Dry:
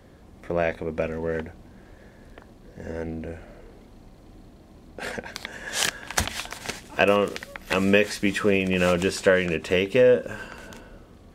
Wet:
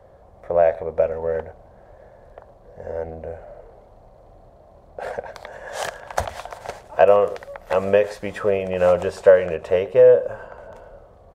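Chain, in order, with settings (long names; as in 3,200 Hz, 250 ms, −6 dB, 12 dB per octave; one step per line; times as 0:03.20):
drawn EQ curve 120 Hz 0 dB, 280 Hz −12 dB, 590 Hz +12 dB, 2,600 Hz −9 dB
slap from a distant wall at 19 metres, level −19 dB
0:09.70–0:10.76: one half of a high-frequency compander decoder only
level −1 dB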